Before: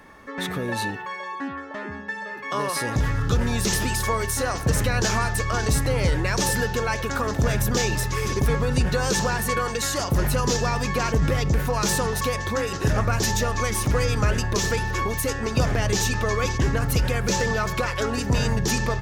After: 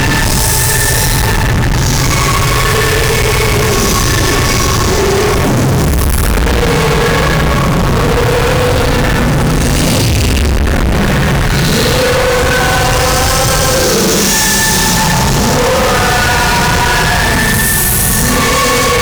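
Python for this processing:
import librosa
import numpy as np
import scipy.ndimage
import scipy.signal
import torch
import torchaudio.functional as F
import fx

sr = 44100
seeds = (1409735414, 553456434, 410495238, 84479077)

y = fx.paulstretch(x, sr, seeds[0], factor=12.0, window_s=0.05, from_s=7.95)
y = fx.fuzz(y, sr, gain_db=41.0, gate_db=-44.0)
y = y * 10.0 ** (4.0 / 20.0)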